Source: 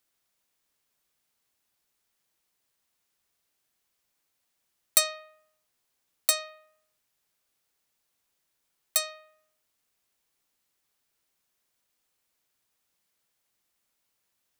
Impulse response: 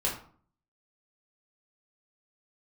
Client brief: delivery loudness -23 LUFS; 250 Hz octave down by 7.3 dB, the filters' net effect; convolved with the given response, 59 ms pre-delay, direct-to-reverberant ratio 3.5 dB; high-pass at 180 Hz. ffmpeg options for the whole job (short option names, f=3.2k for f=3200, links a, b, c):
-filter_complex "[0:a]highpass=180,equalizer=f=250:t=o:g=-9,asplit=2[a][b];[1:a]atrim=start_sample=2205,adelay=59[c];[b][c]afir=irnorm=-1:irlink=0,volume=-10.5dB[d];[a][d]amix=inputs=2:normalize=0,volume=3dB"